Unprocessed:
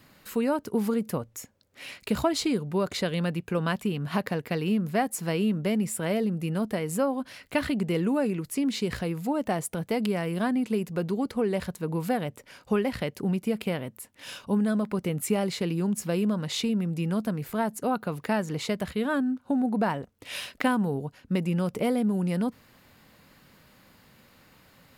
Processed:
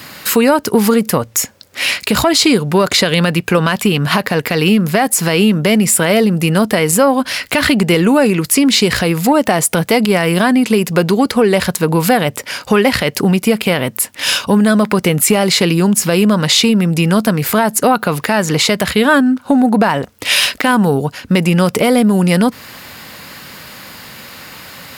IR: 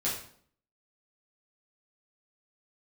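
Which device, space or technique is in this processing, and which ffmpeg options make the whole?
mastering chain: -af "highpass=54,equalizer=frequency=5000:width_type=o:width=0.23:gain=2.5,acompressor=threshold=-33dB:ratio=1.5,asoftclip=type=tanh:threshold=-17dB,tiltshelf=frequency=720:gain=-4.5,alimiter=level_in=23dB:limit=-1dB:release=50:level=0:latency=1,volume=-1dB"

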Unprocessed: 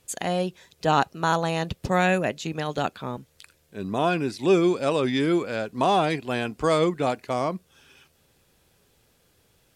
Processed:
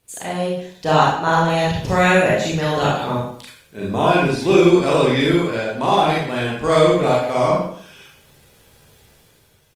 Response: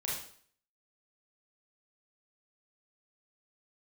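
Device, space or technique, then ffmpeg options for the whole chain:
speakerphone in a meeting room: -filter_complex "[0:a]asettb=1/sr,asplit=3[link_01][link_02][link_03];[link_01]atrim=end=1.064[link_04];[link_02]atrim=start=1.06:end=1.5,asetpts=PTS-STARTPTS,afade=type=in:duration=0.004:curve=qsin,afade=type=out:start_time=0.436:duration=0.004:curve=qsin,highshelf=frequency=5300:gain=-8[link_05];[link_03]atrim=start=1.496[link_06];[link_04][link_05]acrossfade=duration=0.004:curve1=hsin:curve2=qsin[link_07];[link_07][link_06]acrossfade=duration=0.004:curve1=qsin:curve2=hsin[link_08];[1:a]atrim=start_sample=2205[link_09];[link_08][link_09]afir=irnorm=-1:irlink=0,asplit=2[link_10][link_11];[link_11]adelay=110,highpass=300,lowpass=3400,asoftclip=type=hard:threshold=-13dB,volume=-12dB[link_12];[link_10][link_12]amix=inputs=2:normalize=0,dynaudnorm=framelen=190:gausssize=7:maxgain=9dB" -ar 48000 -c:a libopus -b:a 32k

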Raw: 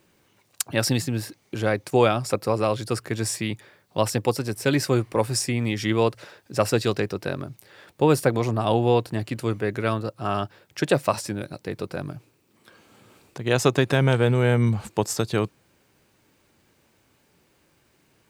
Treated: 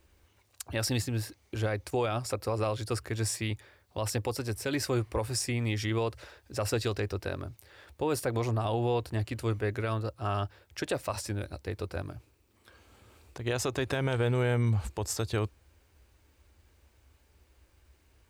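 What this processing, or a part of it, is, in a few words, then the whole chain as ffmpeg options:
car stereo with a boomy subwoofer: -af "lowshelf=frequency=100:width_type=q:width=3:gain=14,alimiter=limit=-15dB:level=0:latency=1:release=66,volume=-5dB"

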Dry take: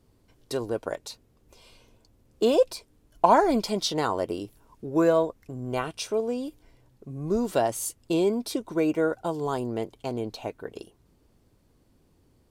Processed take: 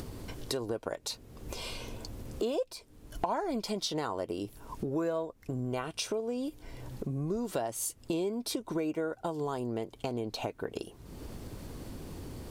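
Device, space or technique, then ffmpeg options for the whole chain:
upward and downward compression: -af "acompressor=mode=upward:threshold=-25dB:ratio=2.5,acompressor=threshold=-31dB:ratio=4"

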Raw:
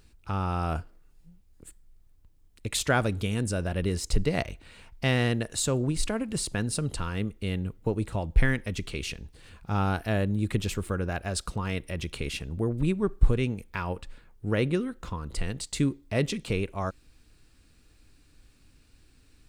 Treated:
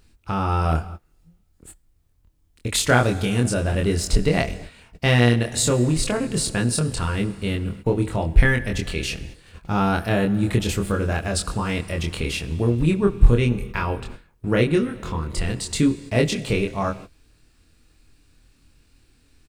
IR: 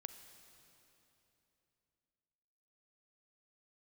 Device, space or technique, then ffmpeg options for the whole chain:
keyed gated reverb: -filter_complex "[0:a]asplit=2[link_01][link_02];[link_02]adelay=25,volume=-3dB[link_03];[link_01][link_03]amix=inputs=2:normalize=0,asplit=3[link_04][link_05][link_06];[1:a]atrim=start_sample=2205[link_07];[link_05][link_07]afir=irnorm=-1:irlink=0[link_08];[link_06]apad=whole_len=860249[link_09];[link_08][link_09]sidechaingate=range=-33dB:threshold=-45dB:ratio=16:detection=peak,volume=4dB[link_10];[link_04][link_10]amix=inputs=2:normalize=0"

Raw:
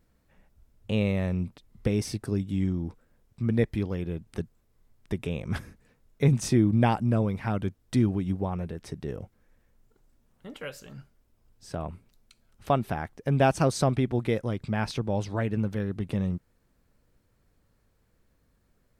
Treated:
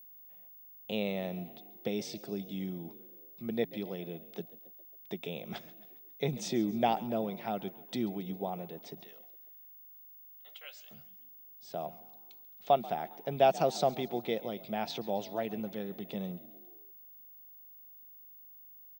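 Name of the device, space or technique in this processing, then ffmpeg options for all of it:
old television with a line whistle: -filter_complex "[0:a]asettb=1/sr,asplit=3[link_01][link_02][link_03];[link_01]atrim=end=9.034[link_04];[link_02]atrim=start=9.03:end=10.91,asetpts=PTS-STARTPTS,afade=type=in:duration=0.004:curve=qsin,afade=type=out:start_time=1.876:duration=0.004:curve=qsin,highpass=1300[link_05];[link_03]atrim=start=10.906[link_06];[link_04][link_05]acrossfade=duration=0.004:curve1=hsin:curve2=qsin[link_07];[link_07][link_06]acrossfade=duration=0.004:curve1=qsin:curve2=hsin,asplit=5[link_08][link_09][link_10][link_11][link_12];[link_09]adelay=136,afreqshift=56,volume=-19.5dB[link_13];[link_10]adelay=272,afreqshift=112,volume=-24.7dB[link_14];[link_11]adelay=408,afreqshift=168,volume=-29.9dB[link_15];[link_12]adelay=544,afreqshift=224,volume=-35.1dB[link_16];[link_08][link_13][link_14][link_15][link_16]amix=inputs=5:normalize=0,highpass=frequency=190:width=0.5412,highpass=frequency=190:width=1.3066,equalizer=frequency=270:width_type=q:width=4:gain=-8,equalizer=frequency=710:width_type=q:width=4:gain=8,equalizer=frequency=1100:width_type=q:width=4:gain=-6,equalizer=frequency=1600:width_type=q:width=4:gain=-8,equalizer=frequency=3500:width_type=q:width=4:gain=8,lowpass=frequency=7100:width=0.5412,lowpass=frequency=7100:width=1.3066,aeval=exprs='val(0)+0.00501*sin(2*PI*15625*n/s)':channel_layout=same,volume=-5dB"

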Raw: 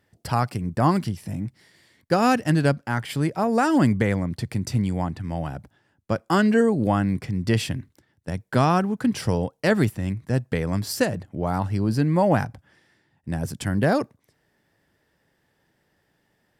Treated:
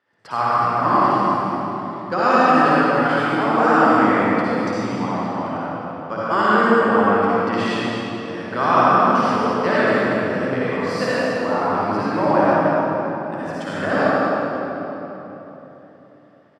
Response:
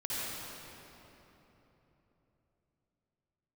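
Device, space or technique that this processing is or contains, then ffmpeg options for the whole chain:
station announcement: -filter_complex "[0:a]highpass=320,lowpass=4400,equalizer=frequency=1200:width_type=o:width=0.58:gain=9,aecho=1:1:151.6|218.7:0.251|0.316[link_01];[1:a]atrim=start_sample=2205[link_02];[link_01][link_02]afir=irnorm=-1:irlink=0"

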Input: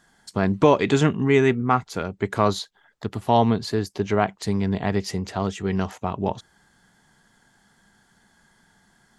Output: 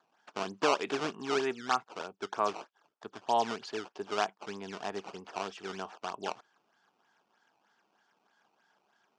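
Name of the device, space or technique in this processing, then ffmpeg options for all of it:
circuit-bent sampling toy: -af "acrusher=samples=15:mix=1:aa=0.000001:lfo=1:lforange=24:lforate=3.2,highpass=490,equalizer=frequency=540:width_type=q:width=4:gain=-5,equalizer=frequency=2000:width_type=q:width=4:gain=-9,equalizer=frequency=4000:width_type=q:width=4:gain=-7,lowpass=frequency=5700:width=0.5412,lowpass=frequency=5700:width=1.3066,volume=-6.5dB"

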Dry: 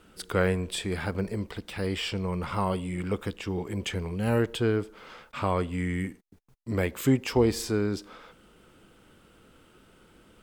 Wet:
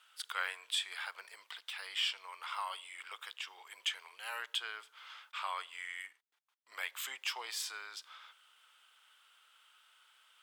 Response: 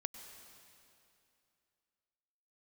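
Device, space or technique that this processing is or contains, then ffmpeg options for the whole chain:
headphones lying on a table: -filter_complex "[0:a]highpass=frequency=1000:width=0.5412,highpass=frequency=1000:width=1.3066,equalizer=frequency=3300:width_type=o:width=0.52:gain=7,asettb=1/sr,asplit=3[link_01][link_02][link_03];[link_01]atrim=end=6.064[link_04];[link_02]atrim=start=6.06:end=6.72,asetpts=PTS-STARTPTS,afade=type=in:duration=0.004:curve=qsin,afade=type=out:start_time=0.656:duration=0.004:curve=qsin,highshelf=frequency=4600:gain=-9.5[link_05];[link_03]atrim=start=6.716[link_06];[link_04][link_05]acrossfade=duration=0.004:curve1=hsin:curve2=qsin[link_07];[link_07][link_06]acrossfade=duration=0.004:curve1=qsin:curve2=hsin,volume=-5dB"

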